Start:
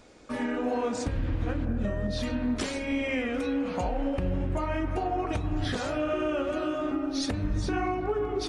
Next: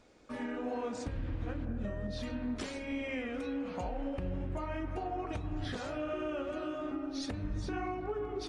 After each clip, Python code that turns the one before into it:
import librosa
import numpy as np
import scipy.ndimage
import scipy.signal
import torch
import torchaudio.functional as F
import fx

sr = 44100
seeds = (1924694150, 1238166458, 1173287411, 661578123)

y = fx.high_shelf(x, sr, hz=9300.0, db=-7.0)
y = y * 10.0 ** (-8.0 / 20.0)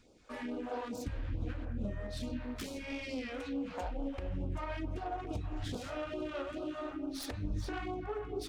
y = fx.self_delay(x, sr, depth_ms=0.11)
y = fx.phaser_stages(y, sr, stages=2, low_hz=140.0, high_hz=1900.0, hz=2.3, feedback_pct=0)
y = y * 10.0 ** (1.0 / 20.0)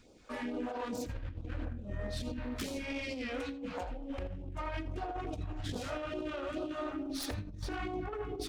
y = fx.over_compress(x, sr, threshold_db=-39.0, ratio=-0.5)
y = y + 10.0 ** (-17.0 / 20.0) * np.pad(y, (int(84 * sr / 1000.0), 0))[:len(y)]
y = y * 10.0 ** (1.5 / 20.0)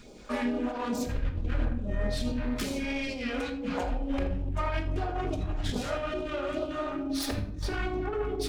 y = fx.rider(x, sr, range_db=10, speed_s=0.5)
y = fx.room_shoebox(y, sr, seeds[0], volume_m3=940.0, walls='furnished', distance_m=1.3)
y = y * 10.0 ** (5.5 / 20.0)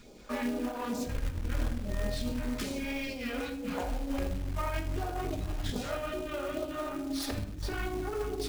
y = fx.quant_float(x, sr, bits=2)
y = y * 10.0 ** (-3.0 / 20.0)